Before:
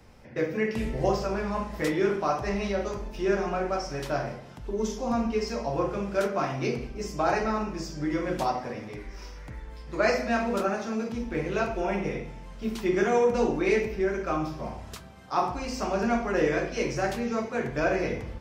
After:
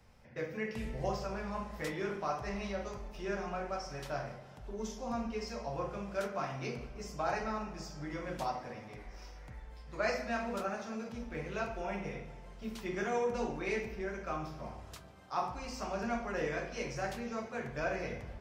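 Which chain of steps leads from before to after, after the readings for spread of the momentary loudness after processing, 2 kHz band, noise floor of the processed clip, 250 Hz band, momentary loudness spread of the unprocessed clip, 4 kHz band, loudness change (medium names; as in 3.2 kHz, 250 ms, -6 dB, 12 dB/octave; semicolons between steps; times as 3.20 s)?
11 LU, -8.0 dB, -52 dBFS, -11.5 dB, 12 LU, -8.0 dB, -10.0 dB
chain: peaking EQ 330 Hz -7 dB 0.84 oct; tape echo 144 ms, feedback 84%, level -19 dB, low-pass 2.8 kHz; trim -8 dB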